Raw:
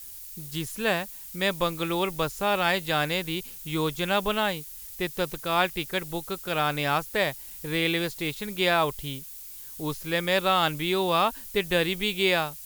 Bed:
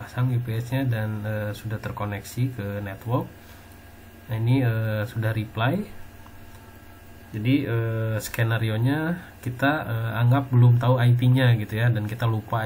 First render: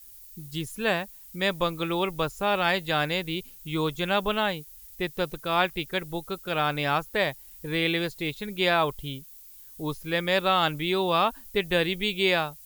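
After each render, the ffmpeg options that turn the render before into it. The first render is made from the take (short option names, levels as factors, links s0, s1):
-af "afftdn=nr=9:nf=-42"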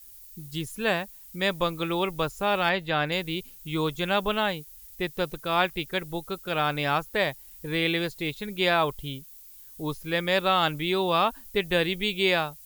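-filter_complex "[0:a]asettb=1/sr,asplit=3[s0][s1][s2];[s0]atrim=end=2.694[s3];[s1]atrim=start=2.69:end=3.12,asetpts=PTS-STARTPTS,afade=t=in:d=0.004:c=qsin,afade=t=out:st=0.426:d=0.004:c=qsin,acrossover=split=4200[s4][s5];[s5]acompressor=threshold=0.00224:ratio=4:attack=1:release=60[s6];[s4][s6]amix=inputs=2:normalize=0[s7];[s2]atrim=start=3.116[s8];[s3][s7]acrossfade=d=0.004:c1=hsin:c2=qsin[s9];[s9][s8]acrossfade=d=0.004:c1=qsin:c2=hsin"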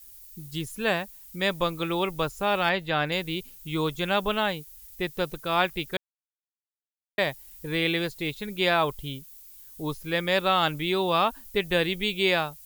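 -filter_complex "[0:a]asplit=3[s0][s1][s2];[s0]atrim=end=5.97,asetpts=PTS-STARTPTS,afade=t=out:st=5.966:d=0.004:c=hsin[s3];[s1]atrim=start=5.97:end=7.18,asetpts=PTS-STARTPTS,volume=0[s4];[s2]atrim=start=7.18,asetpts=PTS-STARTPTS,afade=t=in:d=0.004:c=hsin[s5];[s3][s4][s5]concat=n=3:v=0:a=1"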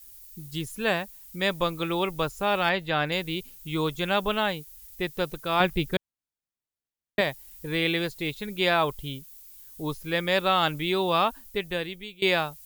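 -filter_complex "[0:a]asettb=1/sr,asplit=3[s0][s1][s2];[s0]atrim=end=5.604[s3];[s1]atrim=start=5.6:end=7.21,asetpts=PTS-STARTPTS,afade=t=in:d=0.004:c=qsin,afade=t=out:st=1.606:d=0.004:c=qsin,lowshelf=f=330:g=11[s4];[s2]atrim=start=7.206[s5];[s3][s4]acrossfade=d=0.004:c1=hsin:c2=qsin[s6];[s6][s5]acrossfade=d=0.004:c1=qsin:c2=hsin,asplit=2[s7][s8];[s7]atrim=end=12.22,asetpts=PTS-STARTPTS,afade=t=out:st=11.22:d=1:silence=0.0891251[s9];[s8]atrim=start=12.22,asetpts=PTS-STARTPTS,afade=t=in:d=0.004:c=hsin:silence=0.0891251[s10];[s9][s10]concat=n=2:v=0:a=1"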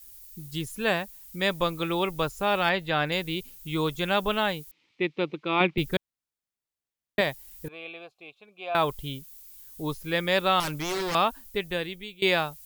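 -filter_complex "[0:a]asettb=1/sr,asplit=3[s0][s1][s2];[s0]atrim=end=4.714[s3];[s1]atrim=start=4.71:end=5.78,asetpts=PTS-STARTPTS,afade=t=in:d=0.004:c=qsin,afade=t=out:st=1.066:d=0.004:c=qsin,highpass=f=150:w=0.5412,highpass=f=150:w=1.3066,equalizer=f=320:t=q:w=4:g=8,equalizer=f=640:t=q:w=4:g=-6,equalizer=f=1600:t=q:w=4:g=-9,equalizer=f=2300:t=q:w=4:g=8,lowpass=f=3600:w=0.5412,lowpass=f=3600:w=1.3066[s4];[s2]atrim=start=5.776[s5];[s3][s4]acrossfade=d=0.004:c1=hsin:c2=qsin[s6];[s6][s5]acrossfade=d=0.004:c1=qsin:c2=hsin,asettb=1/sr,asplit=3[s7][s8][s9];[s7]atrim=end=7.684[s10];[s8]atrim=start=7.68:end=8.75,asetpts=PTS-STARTPTS,afade=t=in:d=0.004:c=qsin,afade=t=out:st=1.066:d=0.004:c=qsin,asplit=3[s11][s12][s13];[s11]bandpass=f=730:t=q:w=8,volume=1[s14];[s12]bandpass=f=1090:t=q:w=8,volume=0.501[s15];[s13]bandpass=f=2440:t=q:w=8,volume=0.355[s16];[s14][s15][s16]amix=inputs=3:normalize=0[s17];[s9]atrim=start=8.746[s18];[s10][s17]acrossfade=d=0.004:c1=hsin:c2=qsin[s19];[s19][s18]acrossfade=d=0.004:c1=qsin:c2=hsin,asettb=1/sr,asplit=3[s20][s21][s22];[s20]atrim=end=10.604[s23];[s21]atrim=start=10.6:end=11.15,asetpts=PTS-STARTPTS,afade=t=in:d=0.004:c=qsin,afade=t=out:st=0.546:d=0.004:c=qsin,aeval=exprs='0.0596*(abs(mod(val(0)/0.0596+3,4)-2)-1)':c=same[s24];[s22]atrim=start=11.146[s25];[s23][s24]acrossfade=d=0.004:c1=hsin:c2=qsin[s26];[s26][s25]acrossfade=d=0.004:c1=qsin:c2=hsin"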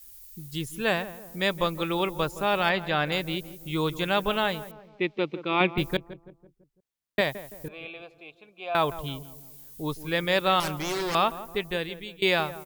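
-filter_complex "[0:a]asplit=2[s0][s1];[s1]adelay=167,lowpass=f=1100:p=1,volume=0.211,asplit=2[s2][s3];[s3]adelay=167,lowpass=f=1100:p=1,volume=0.49,asplit=2[s4][s5];[s5]adelay=167,lowpass=f=1100:p=1,volume=0.49,asplit=2[s6][s7];[s7]adelay=167,lowpass=f=1100:p=1,volume=0.49,asplit=2[s8][s9];[s9]adelay=167,lowpass=f=1100:p=1,volume=0.49[s10];[s0][s2][s4][s6][s8][s10]amix=inputs=6:normalize=0"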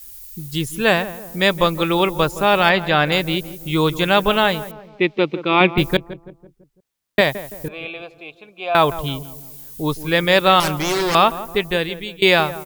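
-af "volume=2.99,alimiter=limit=0.891:level=0:latency=1"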